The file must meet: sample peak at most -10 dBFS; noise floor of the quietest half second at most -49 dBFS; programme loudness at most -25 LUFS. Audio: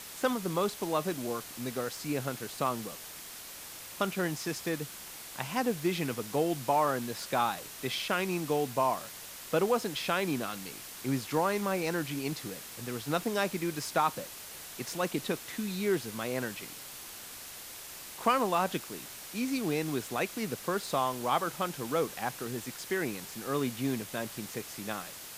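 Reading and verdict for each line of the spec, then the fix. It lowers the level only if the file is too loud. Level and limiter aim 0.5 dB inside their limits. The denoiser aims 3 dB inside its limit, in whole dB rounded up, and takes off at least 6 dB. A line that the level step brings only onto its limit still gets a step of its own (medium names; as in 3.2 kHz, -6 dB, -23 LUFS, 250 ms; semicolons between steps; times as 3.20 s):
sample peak -14.0 dBFS: pass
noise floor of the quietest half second -46 dBFS: fail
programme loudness -33.0 LUFS: pass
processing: noise reduction 6 dB, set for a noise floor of -46 dBFS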